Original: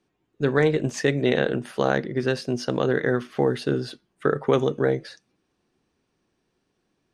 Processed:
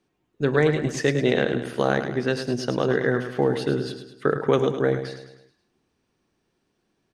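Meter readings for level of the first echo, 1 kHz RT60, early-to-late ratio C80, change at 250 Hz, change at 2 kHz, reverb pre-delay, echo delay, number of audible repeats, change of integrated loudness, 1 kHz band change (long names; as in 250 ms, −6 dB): −9.0 dB, no reverb audible, no reverb audible, +0.5 dB, +0.5 dB, no reverb audible, 105 ms, 5, +0.5 dB, +0.5 dB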